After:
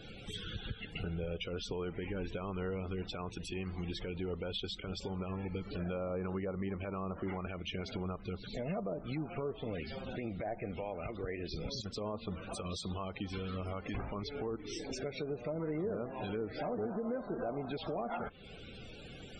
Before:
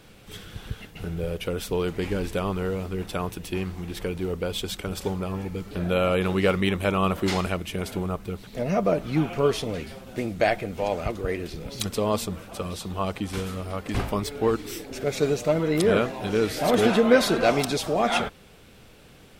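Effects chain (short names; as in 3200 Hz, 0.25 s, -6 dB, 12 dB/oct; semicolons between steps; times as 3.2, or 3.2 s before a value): treble ducked by the level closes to 880 Hz, closed at -18 dBFS; high shelf 3000 Hz +9 dB; compressor 4:1, threshold -38 dBFS, peak gain reduction 21 dB; limiter -30 dBFS, peak gain reduction 10.5 dB; loudest bins only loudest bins 64; gain +1.5 dB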